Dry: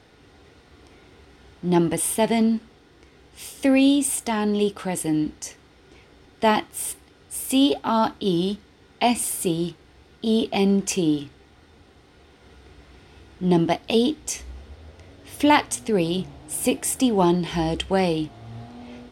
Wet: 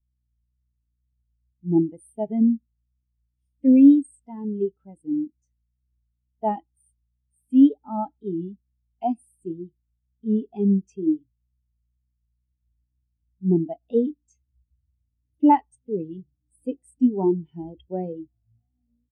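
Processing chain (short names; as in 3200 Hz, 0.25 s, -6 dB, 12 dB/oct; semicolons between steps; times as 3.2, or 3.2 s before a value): hum 60 Hz, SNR 16 dB; vibrato 2.1 Hz 62 cents; speakerphone echo 0.11 s, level -25 dB; spectral expander 2.5:1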